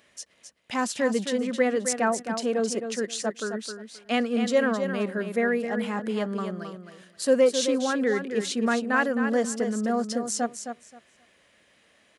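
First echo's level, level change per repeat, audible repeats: -8.0 dB, -14.5 dB, 2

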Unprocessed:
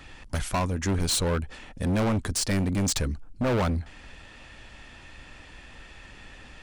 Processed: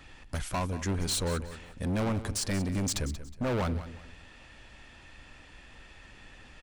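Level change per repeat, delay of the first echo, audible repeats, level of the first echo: -11.0 dB, 183 ms, 2, -13.5 dB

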